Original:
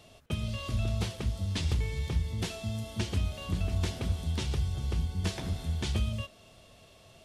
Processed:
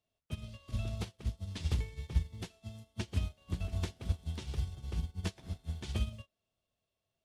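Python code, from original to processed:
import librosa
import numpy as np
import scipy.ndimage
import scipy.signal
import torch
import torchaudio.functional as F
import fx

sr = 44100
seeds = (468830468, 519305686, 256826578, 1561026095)

y = fx.dmg_crackle(x, sr, seeds[0], per_s=300.0, level_db=-53.0)
y = fx.upward_expand(y, sr, threshold_db=-45.0, expansion=2.5)
y = y * 10.0 ** (1.0 / 20.0)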